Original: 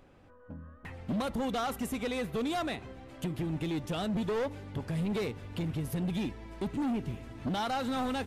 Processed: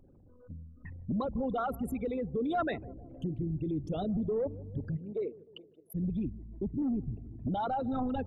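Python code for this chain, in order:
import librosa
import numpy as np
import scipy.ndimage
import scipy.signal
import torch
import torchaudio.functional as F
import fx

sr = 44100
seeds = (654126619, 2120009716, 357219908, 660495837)

y = fx.envelope_sharpen(x, sr, power=3.0)
y = fx.dynamic_eq(y, sr, hz=1400.0, q=0.9, threshold_db=-48.0, ratio=4.0, max_db=6, at=(2.34, 3.37))
y = fx.highpass(y, sr, hz=fx.line((4.96, 240.0), (5.94, 640.0)), slope=24, at=(4.96, 5.94), fade=0.02)
y = fx.echo_bbd(y, sr, ms=154, stages=1024, feedback_pct=56, wet_db=-20)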